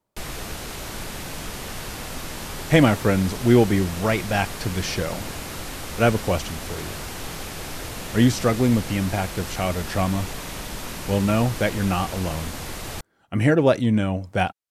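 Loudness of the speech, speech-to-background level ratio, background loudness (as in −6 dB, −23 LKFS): −22.0 LKFS, 11.0 dB, −33.0 LKFS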